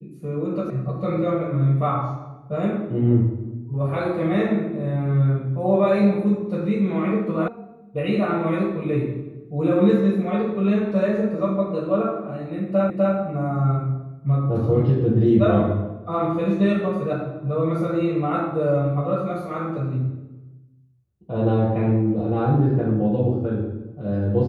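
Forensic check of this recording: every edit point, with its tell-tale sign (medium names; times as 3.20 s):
0.70 s: sound stops dead
7.48 s: sound stops dead
12.90 s: repeat of the last 0.25 s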